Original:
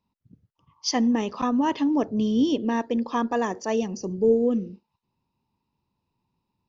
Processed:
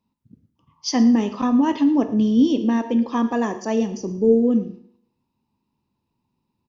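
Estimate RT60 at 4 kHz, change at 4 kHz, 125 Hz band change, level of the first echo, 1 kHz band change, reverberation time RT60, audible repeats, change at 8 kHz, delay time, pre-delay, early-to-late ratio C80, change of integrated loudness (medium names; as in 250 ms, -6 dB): 0.60 s, +0.5 dB, no reading, -19.0 dB, +0.5 dB, 0.65 s, 1, no reading, 114 ms, 5 ms, 14.0 dB, +5.0 dB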